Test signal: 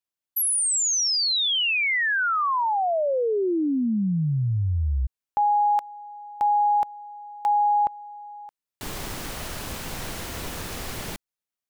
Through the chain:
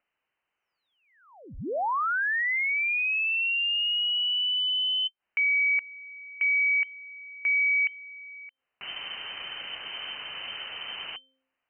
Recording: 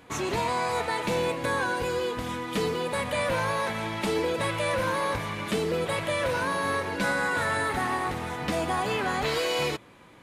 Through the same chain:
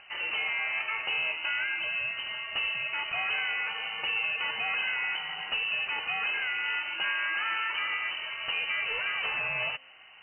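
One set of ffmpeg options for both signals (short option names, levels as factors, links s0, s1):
-af "lowpass=f=2600:t=q:w=0.5098,lowpass=f=2600:t=q:w=0.6013,lowpass=f=2600:t=q:w=0.9,lowpass=f=2600:t=q:w=2.563,afreqshift=-3100,bandreject=f=263.8:t=h:w=4,bandreject=f=527.6:t=h:w=4,acompressor=mode=upward:threshold=0.00794:ratio=1.5:release=70:knee=2.83:detection=peak,volume=0.668"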